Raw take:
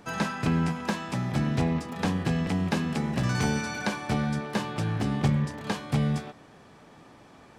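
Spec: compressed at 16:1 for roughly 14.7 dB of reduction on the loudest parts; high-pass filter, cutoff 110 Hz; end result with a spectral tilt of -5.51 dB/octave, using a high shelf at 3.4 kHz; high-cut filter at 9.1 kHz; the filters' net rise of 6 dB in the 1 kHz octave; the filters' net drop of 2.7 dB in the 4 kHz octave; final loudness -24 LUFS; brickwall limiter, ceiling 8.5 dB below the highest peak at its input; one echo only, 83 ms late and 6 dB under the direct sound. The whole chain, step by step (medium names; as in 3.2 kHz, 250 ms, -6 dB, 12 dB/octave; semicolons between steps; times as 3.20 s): high-pass 110 Hz; low-pass 9.1 kHz; peaking EQ 1 kHz +7.5 dB; treble shelf 3.4 kHz +5.5 dB; peaking EQ 4 kHz -8 dB; compression 16:1, threshold -35 dBFS; peak limiter -31.5 dBFS; delay 83 ms -6 dB; trim +16.5 dB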